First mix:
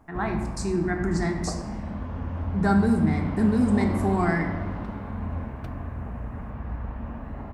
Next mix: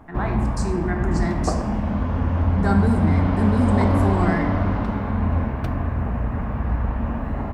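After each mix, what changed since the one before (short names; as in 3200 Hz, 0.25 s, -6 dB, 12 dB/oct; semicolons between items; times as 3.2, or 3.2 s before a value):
background +10.0 dB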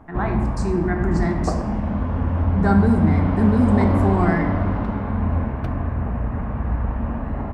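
speech +3.5 dB; master: add high shelf 3400 Hz -9.5 dB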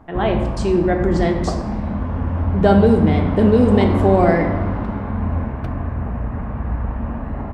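speech: remove fixed phaser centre 1300 Hz, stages 4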